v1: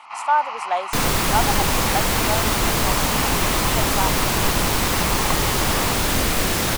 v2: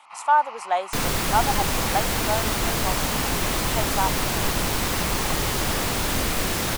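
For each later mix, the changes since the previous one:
first sound -8.5 dB; second sound -4.0 dB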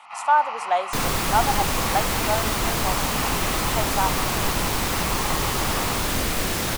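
reverb: on, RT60 1.1 s

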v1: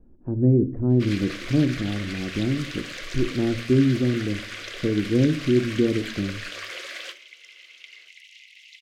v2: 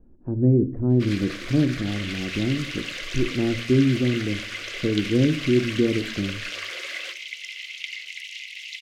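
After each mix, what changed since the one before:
second sound +12.0 dB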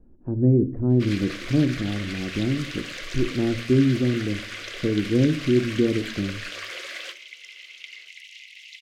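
second sound -7.5 dB

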